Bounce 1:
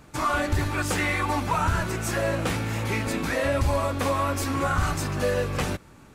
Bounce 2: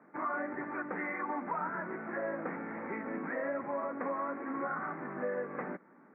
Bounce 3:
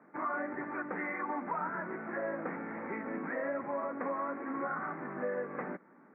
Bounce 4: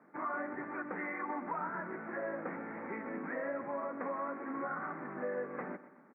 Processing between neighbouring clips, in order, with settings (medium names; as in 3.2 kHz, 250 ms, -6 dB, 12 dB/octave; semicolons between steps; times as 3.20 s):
steep high-pass 190 Hz 36 dB/octave; compression 1.5:1, threshold -31 dBFS, peak gain reduction 4 dB; steep low-pass 2.1 kHz 72 dB/octave; trim -6.5 dB
no audible change
feedback delay 125 ms, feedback 43%, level -15 dB; trim -2.5 dB